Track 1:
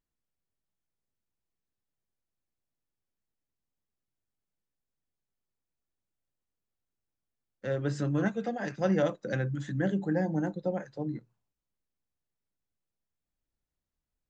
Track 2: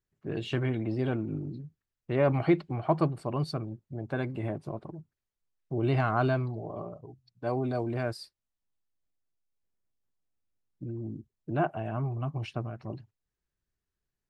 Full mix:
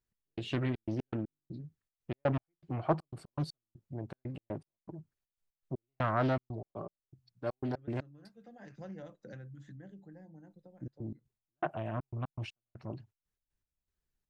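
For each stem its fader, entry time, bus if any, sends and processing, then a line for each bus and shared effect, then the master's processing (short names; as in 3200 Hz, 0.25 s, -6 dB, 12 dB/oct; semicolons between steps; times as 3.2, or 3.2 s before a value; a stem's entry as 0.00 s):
-10.5 dB, 0.00 s, no send, low shelf 160 Hz +9.5 dB; compressor 6:1, threshold -32 dBFS, peak gain reduction 12.5 dB; auto duck -11 dB, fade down 1.90 s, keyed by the second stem
-3.0 dB, 0.00 s, no send, step gate "x..xxx.x." 120 bpm -60 dB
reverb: off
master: Doppler distortion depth 0.46 ms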